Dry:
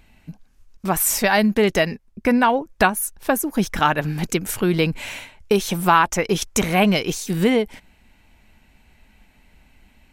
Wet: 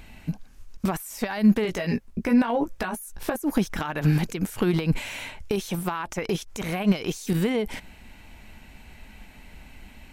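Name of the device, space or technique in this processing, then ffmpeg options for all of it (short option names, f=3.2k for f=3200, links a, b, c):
de-esser from a sidechain: -filter_complex "[0:a]asettb=1/sr,asplit=3[a][b][c];[a]atrim=end=1.634[d];[b]atrim=start=1.63:end=3.36,asetpts=PTS-STARTPTS,afade=t=in:d=0.004:c=qsin,afade=t=out:st=1.726:d=0.004:c=qsin,asplit=2[e][f];[f]adelay=17,volume=-3.5dB[g];[e][g]amix=inputs=2:normalize=0,atrim=end_sample=76293[h];[c]atrim=start=3.356[i];[d][h]acrossfade=d=0.004:c1=hsin:c2=qsin[j];[j][i]acrossfade=d=0.004:c1=qsin:c2=hsin,asplit=2[k][l];[l]highpass=f=5k:p=1,apad=whole_len=446523[m];[k][m]sidechaincompress=threshold=-45dB:ratio=10:attack=1.9:release=46,volume=7.5dB"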